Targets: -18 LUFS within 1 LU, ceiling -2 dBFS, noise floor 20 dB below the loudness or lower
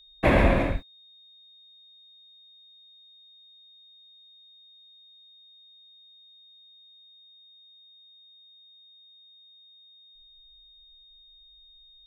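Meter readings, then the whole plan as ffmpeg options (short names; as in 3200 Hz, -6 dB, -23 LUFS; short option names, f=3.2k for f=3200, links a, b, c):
steady tone 3700 Hz; tone level -52 dBFS; loudness -23.5 LUFS; peak -8.0 dBFS; loudness target -18.0 LUFS
-> -af "bandreject=f=3.7k:w=30"
-af "volume=5.5dB"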